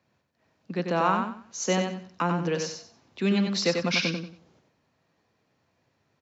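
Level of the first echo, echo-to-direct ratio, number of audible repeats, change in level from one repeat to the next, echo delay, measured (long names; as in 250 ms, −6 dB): −5.0 dB, −4.5 dB, 3, −11.5 dB, 93 ms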